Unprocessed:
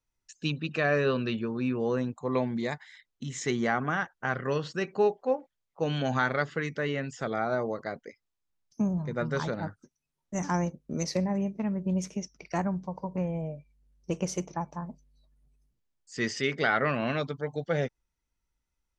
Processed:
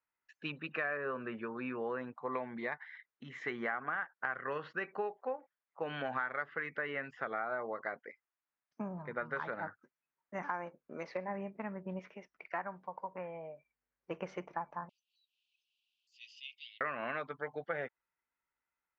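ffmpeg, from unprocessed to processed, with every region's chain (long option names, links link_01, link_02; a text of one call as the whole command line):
ffmpeg -i in.wav -filter_complex "[0:a]asettb=1/sr,asplit=3[link_01][link_02][link_03];[link_01]atrim=end=0.974[link_04];[link_02]atrim=start=0.97:end=1.39,asetpts=PTS-STARTPTS,afade=type=in:duration=0.004:curve=qsin,afade=type=out:start_time=0.416:duration=0.004:curve=qsin,lowpass=1600,aeval=exprs='val(0)*gte(abs(val(0)),0.00178)':channel_layout=same[link_05];[link_03]atrim=start=1.386[link_06];[link_04][link_05]acrossfade=duration=0.004:curve1=hsin:curve2=qsin[link_07];[link_07][link_06]acrossfade=duration=0.004:curve1=qsin:curve2=hsin,asettb=1/sr,asplit=3[link_08][link_09][link_10];[link_08]atrim=end=10.424[link_11];[link_09]atrim=start=10.42:end=11.28,asetpts=PTS-STARTPTS,afade=type=in:duration=0.004:curve=qsin,afade=type=out:start_time=0.856:duration=0.004:curve=qsin,bass=frequency=250:gain=-8,treble=frequency=4000:gain=-3,bandreject=frequency=1900:width=14[link_12];[link_10]atrim=start=11.276[link_13];[link_11][link_12]acrossfade=duration=0.004:curve1=hsin:curve2=qsin[link_14];[link_14][link_13]acrossfade=duration=0.004:curve1=qsin:curve2=hsin,asettb=1/sr,asplit=3[link_15][link_16][link_17];[link_15]atrim=end=11.994[link_18];[link_16]atrim=start=11.99:end=14.11,asetpts=PTS-STARTPTS,afade=type=in:duration=0.004:curve=qsin,afade=type=out:start_time=2.116:duration=0.004:curve=qsin,lowpass=5200,lowshelf=frequency=300:gain=-10.5[link_19];[link_17]atrim=start=14.106[link_20];[link_18][link_19]acrossfade=duration=0.004:curve1=hsin:curve2=qsin[link_21];[link_21][link_20]acrossfade=duration=0.004:curve1=qsin:curve2=hsin,asettb=1/sr,asplit=3[link_22][link_23][link_24];[link_22]atrim=end=14.894[link_25];[link_23]atrim=start=14.89:end=16.81,asetpts=PTS-STARTPTS,afade=type=in:duration=0.004:curve=qsin,afade=type=out:start_time=1.916:duration=0.004:curve=qsin,asuperpass=centerf=4700:order=20:qfactor=0.89,acompressor=mode=upward:threshold=-46dB:ratio=2.5:attack=3.2:release=140:knee=2.83:detection=peak[link_26];[link_24]atrim=start=16.806[link_27];[link_25][link_26]acrossfade=duration=0.004:curve1=hsin:curve2=qsin[link_28];[link_28][link_27]acrossfade=duration=0.004:curve1=qsin:curve2=hsin,lowpass=frequency=1800:width=0.5412,lowpass=frequency=1800:width=1.3066,aderivative,acompressor=threshold=-51dB:ratio=5,volume=17.5dB" out.wav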